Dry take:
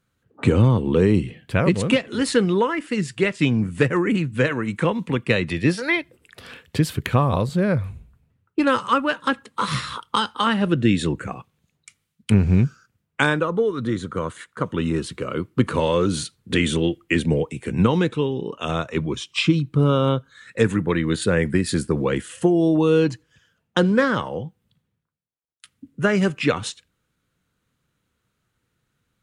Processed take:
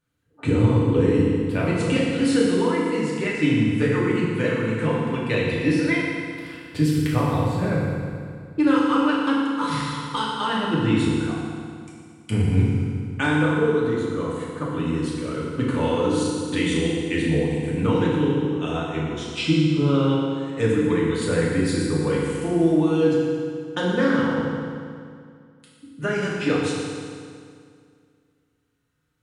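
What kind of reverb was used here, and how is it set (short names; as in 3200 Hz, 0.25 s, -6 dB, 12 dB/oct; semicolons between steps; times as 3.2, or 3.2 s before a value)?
FDN reverb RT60 2.2 s, low-frequency decay 1.1×, high-frequency decay 0.85×, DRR -6 dB; gain -9 dB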